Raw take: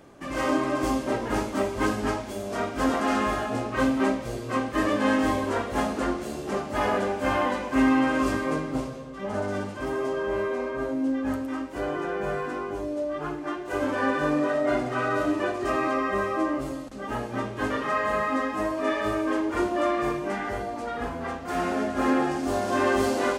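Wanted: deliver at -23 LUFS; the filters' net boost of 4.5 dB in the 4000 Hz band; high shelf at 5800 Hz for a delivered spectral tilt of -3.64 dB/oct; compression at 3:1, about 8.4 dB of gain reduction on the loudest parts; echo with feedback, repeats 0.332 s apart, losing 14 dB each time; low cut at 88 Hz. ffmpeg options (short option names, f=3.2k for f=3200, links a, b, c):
-af "highpass=88,equalizer=f=4k:t=o:g=7.5,highshelf=f=5.8k:g=-4,acompressor=threshold=-29dB:ratio=3,aecho=1:1:332|664:0.2|0.0399,volume=8.5dB"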